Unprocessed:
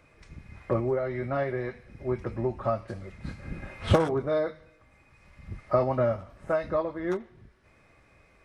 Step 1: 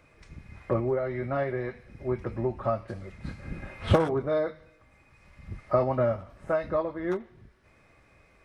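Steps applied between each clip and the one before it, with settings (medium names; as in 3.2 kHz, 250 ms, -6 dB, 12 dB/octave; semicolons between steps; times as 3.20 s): dynamic bell 7 kHz, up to -5 dB, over -56 dBFS, Q 0.86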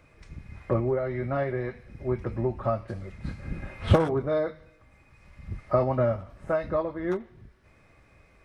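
bass shelf 180 Hz +4.5 dB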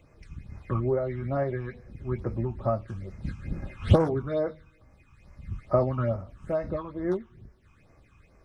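phase shifter stages 8, 2.3 Hz, lowest notch 550–3500 Hz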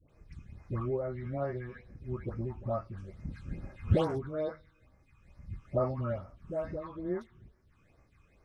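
phase dispersion highs, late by 98 ms, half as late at 940 Hz; trim -6.5 dB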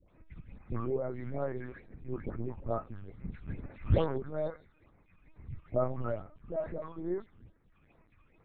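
LPC vocoder at 8 kHz pitch kept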